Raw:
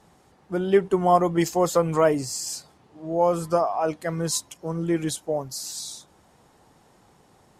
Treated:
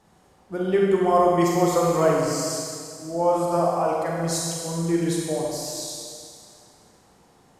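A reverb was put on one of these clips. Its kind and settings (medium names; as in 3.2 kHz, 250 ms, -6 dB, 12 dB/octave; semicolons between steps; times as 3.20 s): Schroeder reverb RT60 2.1 s, combs from 32 ms, DRR -3 dB; trim -3.5 dB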